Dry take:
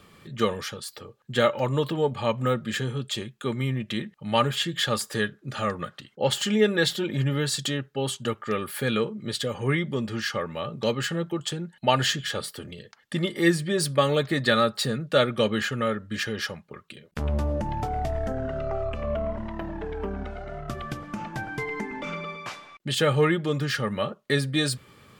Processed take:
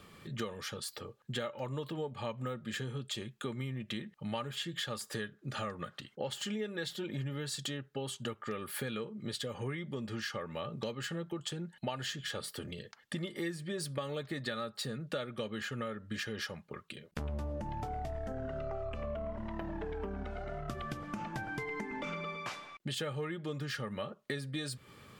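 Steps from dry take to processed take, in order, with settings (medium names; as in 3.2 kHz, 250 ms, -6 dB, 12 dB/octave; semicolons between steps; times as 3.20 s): compression 6:1, threshold -33 dBFS, peak gain reduction 17 dB; trim -2.5 dB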